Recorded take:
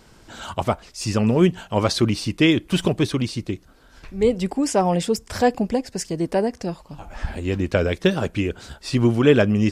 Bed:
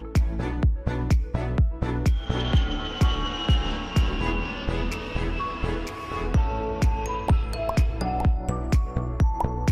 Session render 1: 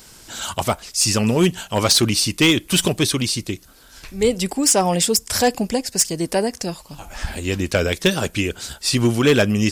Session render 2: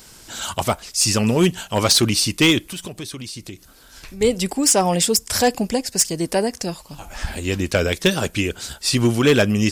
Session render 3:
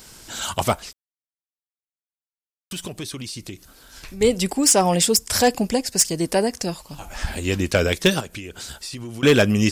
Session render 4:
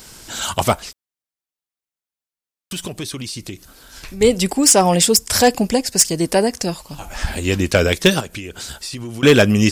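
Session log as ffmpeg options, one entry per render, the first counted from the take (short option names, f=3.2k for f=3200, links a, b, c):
-af "crystalizer=i=5:c=0,asoftclip=type=hard:threshold=-8.5dB"
-filter_complex "[0:a]asettb=1/sr,asplit=3[a][b][c];[a]atrim=end=2.654[d];[b]atrim=start=2.65:end=4.21,asetpts=PTS-STARTPTS,afade=t=in:d=0.004:c=qsin,afade=t=out:st=1.556:d=0.004:c=qsin,acompressor=threshold=-33dB:ratio=3:attack=3.2:release=140:knee=1:detection=peak[e];[c]atrim=start=4.206[f];[d][e]acrossfade=d=0.004:c1=hsin:c2=qsin[g];[g][f]acrossfade=d=0.004:c1=qsin:c2=hsin"
-filter_complex "[0:a]asettb=1/sr,asplit=3[a][b][c];[a]atrim=end=8.204[d];[b]atrim=start=8.2:end=9.23,asetpts=PTS-STARTPTS,afade=t=in:d=0.004:c=qsin,afade=t=out:st=1.026:d=0.004:c=qsin,acompressor=threshold=-30dB:ratio=10:attack=3.2:release=140:knee=1:detection=peak[e];[c]atrim=start=9.226[f];[d][e]acrossfade=d=0.004:c1=hsin:c2=qsin[g];[g][f]acrossfade=d=0.004:c1=qsin:c2=hsin,asplit=3[h][i][j];[h]atrim=end=0.93,asetpts=PTS-STARTPTS,afade=t=out:st=0.926:d=0.004:c=hsin[k];[i]atrim=start=0.93:end=2.71,asetpts=PTS-STARTPTS,volume=0[l];[j]atrim=start=2.71,asetpts=PTS-STARTPTS,afade=t=in:d=0.004:c=hsin[m];[k][l][m]concat=n=3:v=0:a=1"
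-af "volume=4dB"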